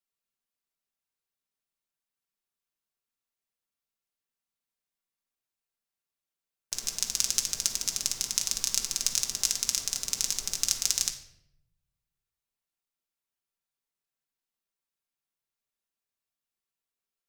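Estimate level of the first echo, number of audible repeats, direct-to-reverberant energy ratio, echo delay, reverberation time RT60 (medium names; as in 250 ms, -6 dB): no echo, no echo, 2.0 dB, no echo, 0.75 s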